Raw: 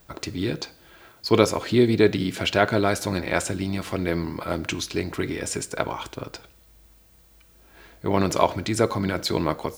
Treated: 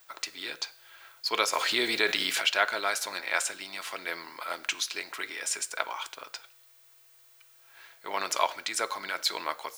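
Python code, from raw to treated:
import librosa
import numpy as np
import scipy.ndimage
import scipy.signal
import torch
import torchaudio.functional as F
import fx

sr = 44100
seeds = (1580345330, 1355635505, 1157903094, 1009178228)

y = scipy.signal.sosfilt(scipy.signal.butter(2, 1100.0, 'highpass', fs=sr, output='sos'), x)
y = fx.env_flatten(y, sr, amount_pct=50, at=(1.52, 2.4), fade=0.02)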